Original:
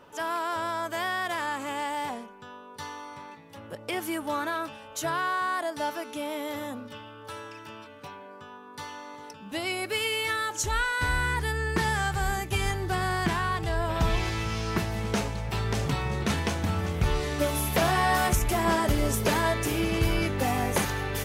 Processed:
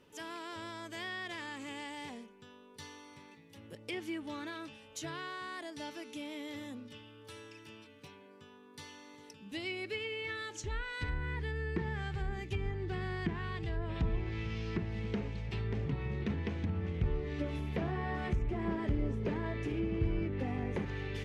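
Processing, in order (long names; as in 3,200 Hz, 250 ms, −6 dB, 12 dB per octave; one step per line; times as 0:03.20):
flat-topped bell 940 Hz −10 dB
treble cut that deepens with the level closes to 1,300 Hz, closed at −23.5 dBFS
level −6.5 dB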